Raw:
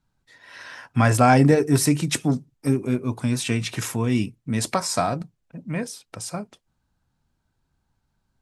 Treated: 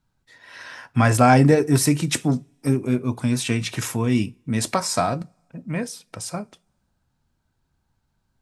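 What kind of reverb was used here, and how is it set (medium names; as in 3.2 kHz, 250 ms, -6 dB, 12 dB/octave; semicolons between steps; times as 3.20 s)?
two-slope reverb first 0.27 s, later 1.7 s, from -28 dB, DRR 17 dB; trim +1 dB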